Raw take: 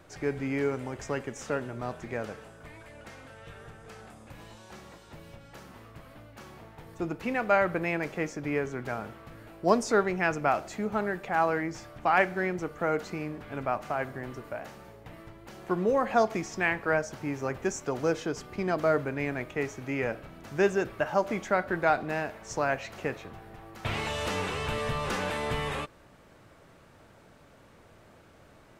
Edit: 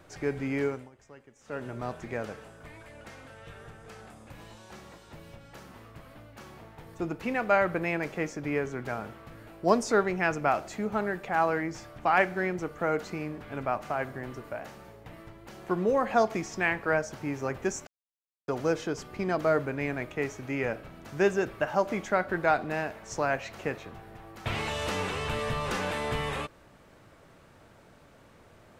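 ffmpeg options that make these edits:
-filter_complex "[0:a]asplit=4[a][b][c][d];[a]atrim=end=0.9,asetpts=PTS-STARTPTS,afade=t=out:st=0.64:d=0.26:silence=0.112202[e];[b]atrim=start=0.9:end=1.43,asetpts=PTS-STARTPTS,volume=-19dB[f];[c]atrim=start=1.43:end=17.87,asetpts=PTS-STARTPTS,afade=t=in:d=0.26:silence=0.112202,afade=t=out:st=16.436:d=0.004:c=hsin,apad=pad_dur=0.61[g];[d]atrim=start=17.87,asetpts=PTS-STARTPTS,afade=t=in:d=0.004:c=hsin[h];[e][f][g][h]concat=n=4:v=0:a=1"

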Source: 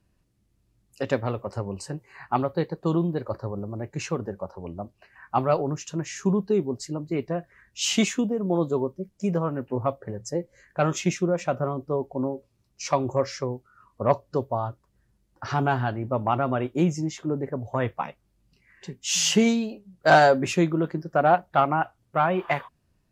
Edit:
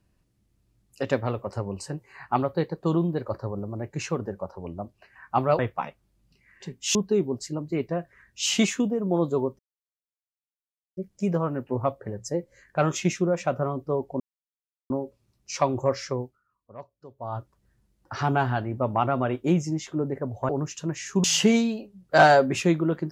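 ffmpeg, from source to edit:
-filter_complex "[0:a]asplit=9[a][b][c][d][e][f][g][h][i];[a]atrim=end=5.592[j];[b]atrim=start=17.798:end=19.162[k];[c]atrim=start=6.338:end=8.98,asetpts=PTS-STARTPTS,afade=t=out:st=2.638:d=0.004:c=hsin,apad=pad_dur=1.38[l];[d]atrim=start=8.98:end=12.21,asetpts=PTS-STARTPTS,afade=t=in:d=0.004:c=hsin,afade=t=out:st=3.226:d=0.004:c=hsin,apad=pad_dur=0.7[m];[e]atrim=start=12.21:end=13.82,asetpts=PTS-STARTPTS,afade=t=in:d=0.004:c=hsin,afade=t=out:st=1.31:d=0.3:c=qua:silence=0.0944061[n];[f]atrim=start=13.82:end=14.39,asetpts=PTS-STARTPTS,volume=-20.5dB[o];[g]atrim=start=14.39:end=17.802,asetpts=PTS-STARTPTS,afade=t=in:d=0.3:c=qua:silence=0.0944061[p];[h]atrim=start=5.588:end=6.342[q];[i]atrim=start=19.158[r];[j][k]acrossfade=d=0.004:c1=hsin:c2=hsin[s];[l][m][n][o][p]concat=n=5:v=0:a=1[t];[s][t]acrossfade=d=0.004:c1=hsin:c2=hsin[u];[u][q]acrossfade=d=0.004:c1=hsin:c2=hsin[v];[v][r]acrossfade=d=0.004:c1=hsin:c2=hsin"

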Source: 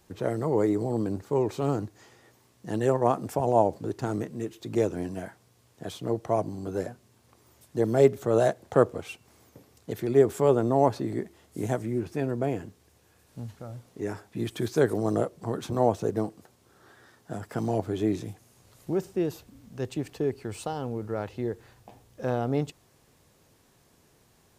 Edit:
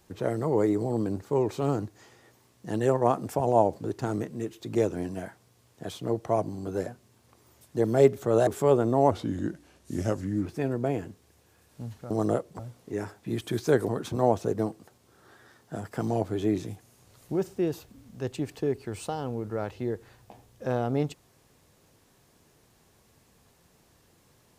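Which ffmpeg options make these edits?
-filter_complex "[0:a]asplit=7[a][b][c][d][e][f][g];[a]atrim=end=8.472[h];[b]atrim=start=10.248:end=10.894[i];[c]atrim=start=10.89:end=12.04,asetpts=PTS-STARTPTS,asetrate=37485,aresample=44100[j];[d]atrim=start=12.036:end=13.682[k];[e]atrim=start=14.968:end=15.462[l];[f]atrim=start=13.678:end=14.972[m];[g]atrim=start=15.458[n];[h][i]acrossfade=d=0.004:c1=hsin:c2=hsin[o];[o][j]acrossfade=d=0.004:c1=hsin:c2=hsin[p];[p][k]acrossfade=d=0.004:c1=hsin:c2=hsin[q];[q][l]acrossfade=d=0.004:c1=hsin:c2=hsin[r];[r][m]acrossfade=d=0.004:c1=hsin:c2=hsin[s];[s][n]acrossfade=d=0.004:c1=hsin:c2=hsin"

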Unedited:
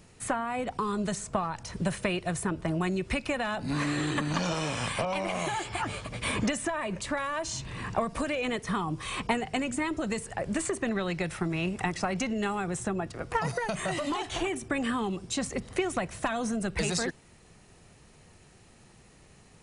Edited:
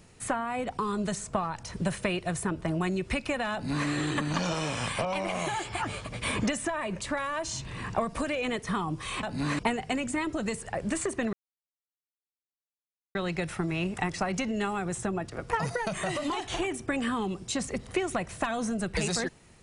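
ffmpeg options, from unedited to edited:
-filter_complex "[0:a]asplit=4[a][b][c][d];[a]atrim=end=9.232[e];[b]atrim=start=3.528:end=3.892[f];[c]atrim=start=9.228:end=10.97,asetpts=PTS-STARTPTS,afade=t=out:st=1.738:d=0.004:c=hsin,apad=pad_dur=1.82[g];[d]atrim=start=10.97,asetpts=PTS-STARTPTS,afade=t=in:d=0.004:c=hsin[h];[e][f]acrossfade=d=0.004:c1=hsin:c2=hsin[i];[g][h]concat=n=2:v=0:a=1[j];[i][j]acrossfade=d=0.004:c1=hsin:c2=hsin"

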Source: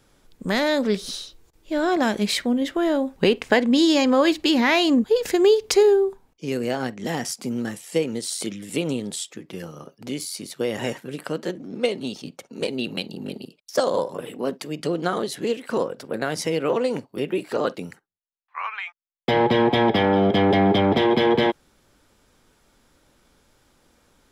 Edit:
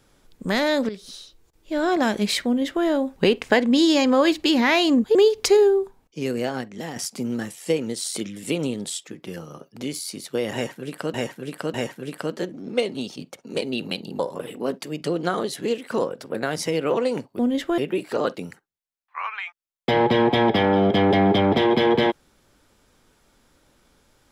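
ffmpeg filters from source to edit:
-filter_complex "[0:a]asplit=9[a][b][c][d][e][f][g][h][i];[a]atrim=end=0.89,asetpts=PTS-STARTPTS,afade=t=out:st=0.886:d=0.004:c=hsin:silence=0.199526[j];[b]atrim=start=0.89:end=5.152,asetpts=PTS-STARTPTS,afade=t=in:d=0.98:silence=0.199526[k];[c]atrim=start=5.408:end=7.22,asetpts=PTS-STARTPTS,afade=t=out:st=1.222:d=0.59:silence=0.398107[l];[d]atrim=start=7.22:end=11.402,asetpts=PTS-STARTPTS,afade=t=in:d=0.004:c=hsin:silence=0.398107[m];[e]atrim=start=10.798:end=11.402[n];[f]atrim=start=10.798:end=13.252[o];[g]atrim=start=13.978:end=17.182[p];[h]atrim=start=2.458:end=2.852[q];[i]atrim=start=17.178[r];[j][k]concat=n=2:v=0:a=1[s];[l][m]concat=n=2:v=0:a=1[t];[s][t]acrossfade=d=0.004:c1=hsin:c2=hsin[u];[u][n]acrossfade=d=0.004:c1=hsin:c2=hsin[v];[v][o]acrossfade=d=0.004:c1=hsin:c2=hsin[w];[w][p]acrossfade=d=0.004:c1=hsin:c2=hsin[x];[x][q]acrossfade=d=0.004:c1=hsin:c2=hsin[y];[y][r]acrossfade=d=0.004:c1=hsin:c2=hsin"

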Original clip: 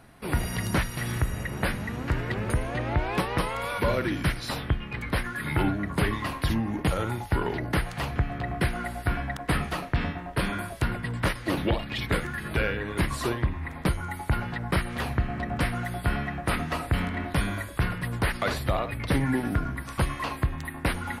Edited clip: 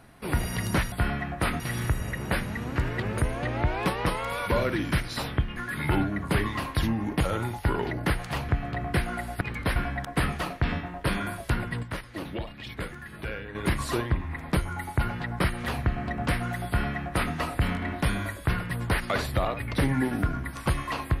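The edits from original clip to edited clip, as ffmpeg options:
-filter_complex "[0:a]asplit=8[a][b][c][d][e][f][g][h];[a]atrim=end=0.922[i];[b]atrim=start=15.978:end=16.662[j];[c]atrim=start=0.918:end=4.882[k];[d]atrim=start=5.228:end=9.082[l];[e]atrim=start=4.878:end=5.232[m];[f]atrim=start=9.078:end=11.152[n];[g]atrim=start=11.148:end=12.872,asetpts=PTS-STARTPTS,volume=-8.5dB[o];[h]atrim=start=12.868[p];[i][j]acrossfade=d=0.004:c1=hsin:c2=hsin[q];[q][k]acrossfade=d=0.004:c1=hsin:c2=hsin[r];[r][l]acrossfade=d=0.004:c1=hsin:c2=hsin[s];[s][m]acrossfade=d=0.004:c1=hsin:c2=hsin[t];[t][n]acrossfade=d=0.004:c1=hsin:c2=hsin[u];[u][o]acrossfade=d=0.004:c1=hsin:c2=hsin[v];[v][p]acrossfade=d=0.004:c1=hsin:c2=hsin"

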